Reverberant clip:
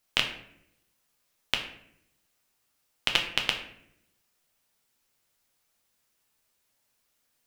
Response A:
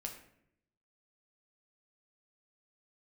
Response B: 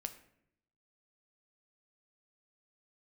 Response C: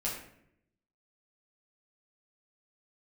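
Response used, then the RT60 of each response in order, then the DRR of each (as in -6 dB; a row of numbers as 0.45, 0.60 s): A; 0.70, 0.70, 0.70 s; 2.0, 8.0, -6.0 dB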